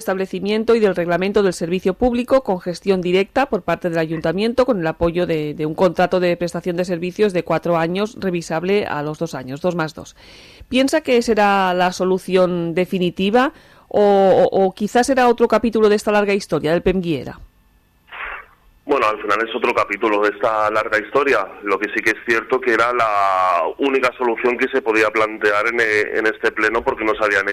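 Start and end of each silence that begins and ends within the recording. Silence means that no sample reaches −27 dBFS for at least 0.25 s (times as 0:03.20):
0:10.08–0:10.71
0:13.49–0:13.91
0:17.33–0:18.13
0:18.40–0:18.87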